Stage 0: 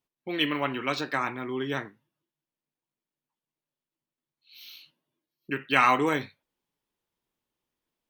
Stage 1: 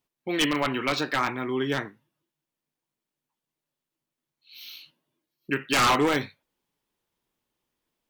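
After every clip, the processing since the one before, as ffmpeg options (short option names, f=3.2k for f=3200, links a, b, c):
-af "aeval=exprs='0.112*(abs(mod(val(0)/0.112+3,4)-2)-1)':c=same,volume=4dB"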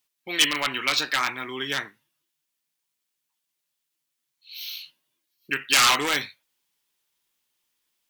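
-af "tiltshelf=f=1.2k:g=-9.5"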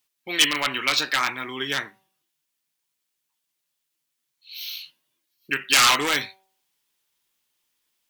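-af "bandreject=f=191.5:t=h:w=4,bandreject=f=383:t=h:w=4,bandreject=f=574.5:t=h:w=4,bandreject=f=766:t=h:w=4,bandreject=f=957.5:t=h:w=4,bandreject=f=1.149k:t=h:w=4,volume=1.5dB"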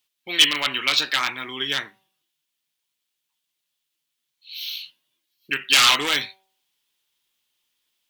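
-af "equalizer=f=3.3k:t=o:w=0.85:g=7,volume=-2dB"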